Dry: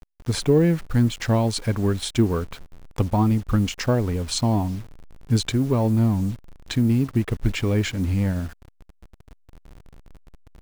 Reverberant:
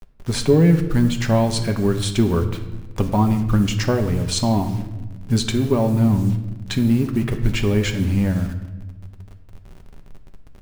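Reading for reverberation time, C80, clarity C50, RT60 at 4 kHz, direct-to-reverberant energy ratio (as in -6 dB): 1.1 s, 12.0 dB, 10.5 dB, 0.80 s, 5.0 dB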